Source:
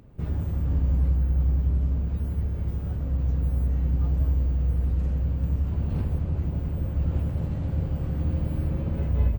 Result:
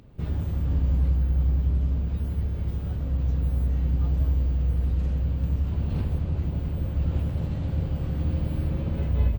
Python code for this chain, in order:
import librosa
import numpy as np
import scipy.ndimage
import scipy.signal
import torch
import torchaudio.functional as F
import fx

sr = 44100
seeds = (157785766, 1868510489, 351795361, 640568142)

y = fx.peak_eq(x, sr, hz=3700.0, db=6.5, octaves=1.2)